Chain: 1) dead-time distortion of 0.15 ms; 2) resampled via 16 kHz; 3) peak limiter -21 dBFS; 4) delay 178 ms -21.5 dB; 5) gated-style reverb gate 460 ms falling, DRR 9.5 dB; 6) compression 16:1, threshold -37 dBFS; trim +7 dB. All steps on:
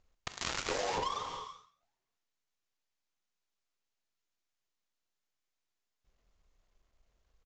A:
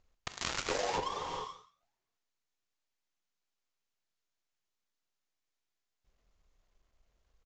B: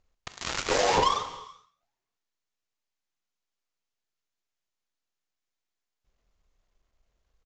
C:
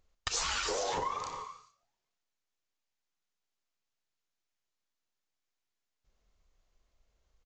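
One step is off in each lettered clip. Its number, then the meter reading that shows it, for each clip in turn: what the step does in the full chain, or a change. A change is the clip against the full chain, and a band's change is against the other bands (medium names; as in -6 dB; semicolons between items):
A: 3, mean gain reduction 3.0 dB; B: 6, mean gain reduction 5.5 dB; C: 1, crest factor change -1.5 dB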